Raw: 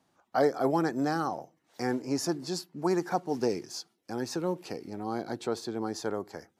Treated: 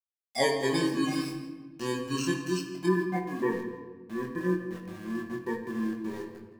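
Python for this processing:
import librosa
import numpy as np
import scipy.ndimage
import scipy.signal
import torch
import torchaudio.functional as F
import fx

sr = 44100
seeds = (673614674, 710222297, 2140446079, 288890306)

y = fx.bit_reversed(x, sr, seeds[0], block=32)
y = fx.noise_reduce_blind(y, sr, reduce_db=19)
y = fx.steep_lowpass(y, sr, hz=fx.steps((0.0, 8600.0), (2.85, 2100.0)), slope=36)
y = fx.dereverb_blind(y, sr, rt60_s=0.51)
y = fx.highpass(y, sr, hz=64.0, slope=6)
y = np.where(np.abs(y) >= 10.0 ** (-45.5 / 20.0), y, 0.0)
y = fx.doubler(y, sr, ms=22.0, db=-3.5)
y = y + 10.0 ** (-18.0 / 20.0) * np.pad(y, (int(166 * sr / 1000.0), 0))[:len(y)]
y = fx.room_shoebox(y, sr, seeds[1], volume_m3=1100.0, walls='mixed', distance_m=1.1)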